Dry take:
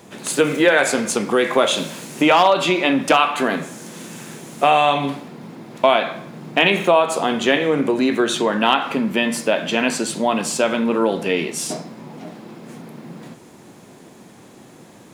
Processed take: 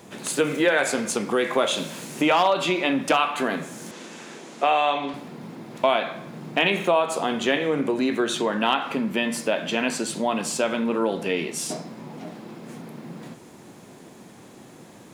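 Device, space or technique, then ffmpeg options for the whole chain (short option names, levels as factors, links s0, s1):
parallel compression: -filter_complex "[0:a]asplit=2[s0][s1];[s1]acompressor=threshold=0.0355:ratio=6,volume=0.708[s2];[s0][s2]amix=inputs=2:normalize=0,asettb=1/sr,asplit=3[s3][s4][s5];[s3]atrim=end=3.914[s6];[s4]atrim=start=3.91:end=5.14,asetpts=PTS-STARTPTS,afade=t=in:d=0.004:c=qsin,afade=t=out:st=1.226:d=0.004:c=qsin,acrossover=split=230 7200:gain=0.112 1 0.1[s7][s8][s9];[s7][s8][s9]amix=inputs=3:normalize=0[s10];[s5]atrim=start=5.136[s11];[s6][s10]acrossfade=d=0.004:c1=hsin:c2=qsin[s12];[s12][s11]acrossfade=d=0.004:c1=qsin:c2=hsin,volume=0.473"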